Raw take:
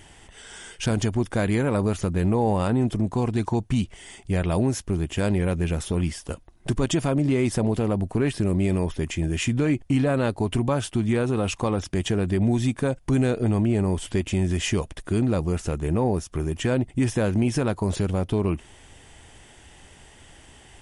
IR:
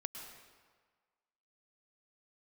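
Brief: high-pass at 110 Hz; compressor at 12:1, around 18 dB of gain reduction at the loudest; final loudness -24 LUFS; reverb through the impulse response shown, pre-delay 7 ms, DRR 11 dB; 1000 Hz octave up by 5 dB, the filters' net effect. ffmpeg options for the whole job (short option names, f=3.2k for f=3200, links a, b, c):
-filter_complex "[0:a]highpass=110,equalizer=f=1k:t=o:g=6.5,acompressor=threshold=-36dB:ratio=12,asplit=2[a][b];[1:a]atrim=start_sample=2205,adelay=7[c];[b][c]afir=irnorm=-1:irlink=0,volume=-9.5dB[d];[a][d]amix=inputs=2:normalize=0,volume=17dB"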